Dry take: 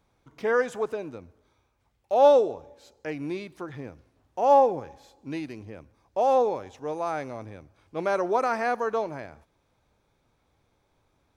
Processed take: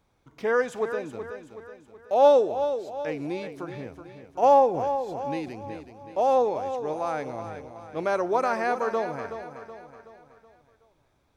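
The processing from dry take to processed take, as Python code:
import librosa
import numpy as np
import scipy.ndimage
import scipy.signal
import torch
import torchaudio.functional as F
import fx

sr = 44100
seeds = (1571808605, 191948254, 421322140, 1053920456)

p1 = x + fx.echo_feedback(x, sr, ms=374, feedback_pct=47, wet_db=-10.0, dry=0)
y = fx.pre_swell(p1, sr, db_per_s=24.0, at=(4.42, 5.49), fade=0.02)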